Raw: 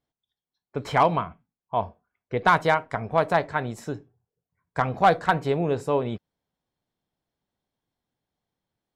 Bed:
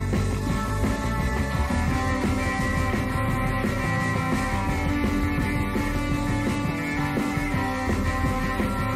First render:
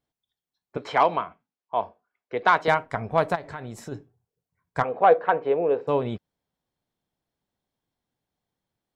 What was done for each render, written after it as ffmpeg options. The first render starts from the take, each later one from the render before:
ffmpeg -i in.wav -filter_complex "[0:a]asettb=1/sr,asplit=3[link_01][link_02][link_03];[link_01]atrim=end=0.774[link_04];[link_02]atrim=start=0.77:end=2.68,asetpts=PTS-STARTPTS,afade=type=in:duration=0.004:curve=qsin,afade=type=out:start_time=1.906:duration=0.004:curve=qsin,acrossover=split=270 6300:gain=0.158 1 0.126[link_05][link_06][link_07];[link_05][link_06][link_07]amix=inputs=3:normalize=0[link_08];[link_03]atrim=start=2.676[link_09];[link_04][link_08]acrossfade=duration=0.004:curve1=hsin:curve2=qsin[link_10];[link_10][link_09]acrossfade=duration=0.004:curve1=qsin:curve2=hsin,asplit=3[link_11][link_12][link_13];[link_11]afade=type=out:start_time=3.34:duration=0.02[link_14];[link_12]acompressor=threshold=-32dB:ratio=5:attack=3.2:release=140:knee=1:detection=peak,afade=type=in:start_time=3.34:duration=0.02,afade=type=out:start_time=3.91:duration=0.02[link_15];[link_13]afade=type=in:start_time=3.91:duration=0.02[link_16];[link_14][link_15][link_16]amix=inputs=3:normalize=0,asplit=3[link_17][link_18][link_19];[link_17]afade=type=out:start_time=4.82:duration=0.02[link_20];[link_18]highpass=360,equalizer=frequency=480:width_type=q:width=4:gain=10,equalizer=frequency=1400:width_type=q:width=4:gain=-3,equalizer=frequency=2000:width_type=q:width=4:gain=-5,lowpass=frequency=2600:width=0.5412,lowpass=frequency=2600:width=1.3066,afade=type=in:start_time=4.82:duration=0.02,afade=type=out:start_time=5.87:duration=0.02[link_21];[link_19]afade=type=in:start_time=5.87:duration=0.02[link_22];[link_20][link_21][link_22]amix=inputs=3:normalize=0" out.wav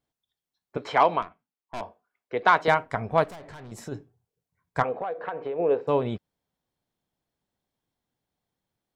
ffmpeg -i in.wav -filter_complex "[0:a]asettb=1/sr,asplit=3[link_01][link_02][link_03];[link_01]atrim=end=1.224[link_04];[link_02]atrim=start=1.22:end=1.81,asetpts=PTS-STARTPTS,afade=type=in:duration=0.004:curve=qsin,afade=type=out:start_time=0.586:duration=0.004:curve=qsin,aeval=exprs='(tanh(35.5*val(0)+0.8)-tanh(0.8))/35.5':channel_layout=same[link_05];[link_03]atrim=start=1.806[link_06];[link_04][link_05]acrossfade=duration=0.004:curve1=hsin:curve2=qsin[link_07];[link_07][link_06]acrossfade=duration=0.004:curve1=qsin:curve2=hsin,asettb=1/sr,asplit=3[link_08][link_09][link_10];[link_08]atrim=end=3.244[link_11];[link_09]atrim=start=3.24:end=3.72,asetpts=PTS-STARTPTS,afade=type=in:duration=0.004:curve=qsin,afade=type=out:start_time=0.476:duration=0.004:curve=qsin,aeval=exprs='(tanh(100*val(0)+0.25)-tanh(0.25))/100':channel_layout=same[link_12];[link_10]atrim=start=3.716[link_13];[link_11][link_12]acrossfade=duration=0.004:curve1=hsin:curve2=qsin[link_14];[link_14][link_13]acrossfade=duration=0.004:curve1=qsin:curve2=hsin,asplit=3[link_15][link_16][link_17];[link_15]afade=type=out:start_time=4.94:duration=0.02[link_18];[link_16]acompressor=threshold=-27dB:ratio=12:attack=3.2:release=140:knee=1:detection=peak,afade=type=in:start_time=4.94:duration=0.02,afade=type=out:start_time=5.58:duration=0.02[link_19];[link_17]afade=type=in:start_time=5.58:duration=0.02[link_20];[link_18][link_19][link_20]amix=inputs=3:normalize=0" out.wav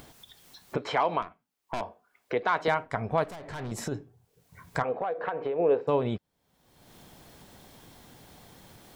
ffmpeg -i in.wav -af "acompressor=mode=upward:threshold=-27dB:ratio=2.5,alimiter=limit=-14.5dB:level=0:latency=1:release=90" out.wav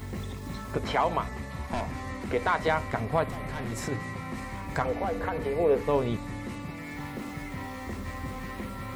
ffmpeg -i in.wav -i bed.wav -filter_complex "[1:a]volume=-12dB[link_01];[0:a][link_01]amix=inputs=2:normalize=0" out.wav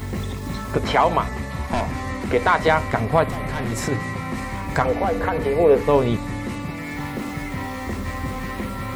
ffmpeg -i in.wav -af "volume=8.5dB" out.wav

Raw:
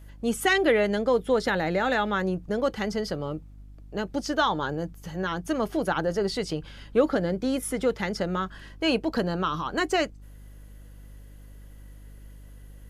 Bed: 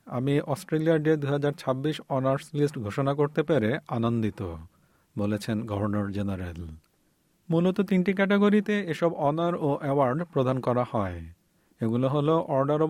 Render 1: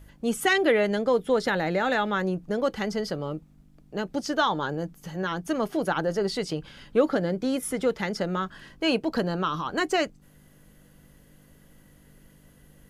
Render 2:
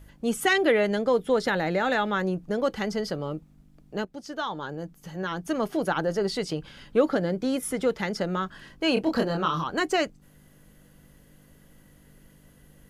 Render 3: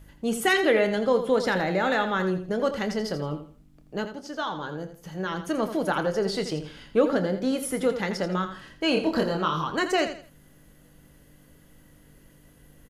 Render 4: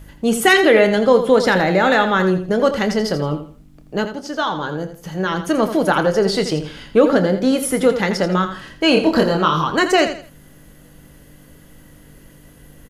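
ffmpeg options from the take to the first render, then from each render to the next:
ffmpeg -i in.wav -af "bandreject=frequency=50:width_type=h:width=4,bandreject=frequency=100:width_type=h:width=4" out.wav
ffmpeg -i in.wav -filter_complex "[0:a]asettb=1/sr,asplit=3[link_01][link_02][link_03];[link_01]atrim=end=8.944[link_04];[link_02]atrim=start=8.94:end=9.64,asetpts=PTS-STARTPTS,afade=type=in:duration=0.004:curve=qsin,afade=type=out:start_time=0.696:duration=0.004:curve=qsin,asplit=2[link_05][link_06];[link_06]adelay=25,volume=-3dB[link_07];[link_05][link_07]amix=inputs=2:normalize=0,atrim=end_sample=30870[link_08];[link_03]atrim=start=9.636[link_09];[link_04][link_08]acrossfade=duration=0.004:curve1=hsin:curve2=qsin[link_10];[link_10][link_09]acrossfade=duration=0.004:curve1=qsin:curve2=hsin,asplit=2[link_11][link_12];[link_11]atrim=end=4.05,asetpts=PTS-STARTPTS,afade=type=out:start_time=4.046:duration=0.004:curve=hsin:silence=0.237137[link_13];[link_12]atrim=start=4.05,asetpts=PTS-STARTPTS,afade=type=in:duration=1.6:silence=0.237137[link_14];[link_13][link_14]concat=n=2:v=0:a=1" out.wav
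ffmpeg -i in.wav -filter_complex "[0:a]asplit=2[link_01][link_02];[link_02]adelay=27,volume=-12dB[link_03];[link_01][link_03]amix=inputs=2:normalize=0,aecho=1:1:83|166|249:0.316|0.0917|0.0266" out.wav
ffmpeg -i in.wav -af "volume=9.5dB,alimiter=limit=-2dB:level=0:latency=1" out.wav

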